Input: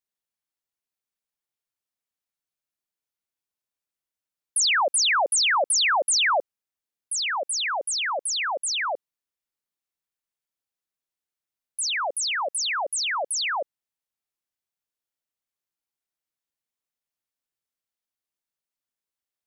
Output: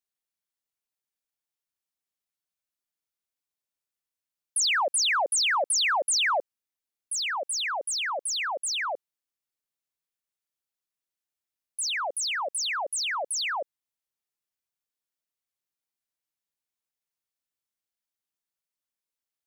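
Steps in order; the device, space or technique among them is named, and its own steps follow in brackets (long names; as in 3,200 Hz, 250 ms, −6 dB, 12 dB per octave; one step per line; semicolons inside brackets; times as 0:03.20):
exciter from parts (in parallel at −8 dB: high-pass filter 3,100 Hz 6 dB per octave + soft clipping −36.5 dBFS, distortion −5 dB)
on the sum: level −3.5 dB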